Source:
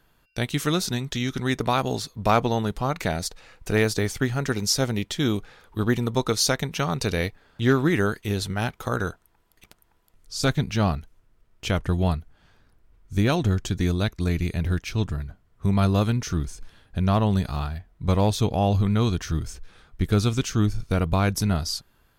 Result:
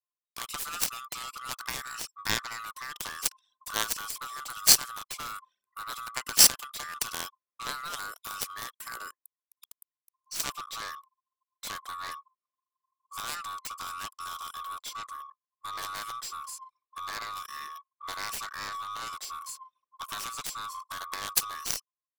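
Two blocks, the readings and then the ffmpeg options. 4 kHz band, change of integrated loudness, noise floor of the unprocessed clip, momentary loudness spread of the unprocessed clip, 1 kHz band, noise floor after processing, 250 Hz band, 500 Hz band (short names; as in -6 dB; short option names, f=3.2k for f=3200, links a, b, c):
-0.5 dB, -6.0 dB, -63 dBFS, 9 LU, -6.5 dB, under -85 dBFS, -27.5 dB, -22.5 dB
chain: -filter_complex "[0:a]afftfilt=real='real(if(lt(b,960),b+48*(1-2*mod(floor(b/48),2)),b),0)':imag='imag(if(lt(b,960),b+48*(1-2*mod(floor(b/48),2)),b),0)':win_size=2048:overlap=0.75,aderivative,anlmdn=0.00158,asplit=2[a][b];[b]acompressor=threshold=-41dB:ratio=6,volume=-1dB[c];[a][c]amix=inputs=2:normalize=0,aeval=exprs='0.299*(cos(1*acos(clip(val(0)/0.299,-1,1)))-cos(1*PI/2))+0.0596*(cos(7*acos(clip(val(0)/0.299,-1,1)))-cos(7*PI/2))+0.00211*(cos(8*acos(clip(val(0)/0.299,-1,1)))-cos(8*PI/2))':c=same,volume=7.5dB"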